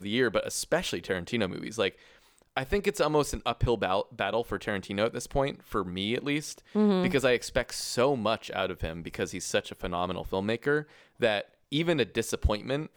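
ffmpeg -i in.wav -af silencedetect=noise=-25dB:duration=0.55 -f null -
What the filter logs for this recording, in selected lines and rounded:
silence_start: 1.88
silence_end: 2.57 | silence_duration: 0.69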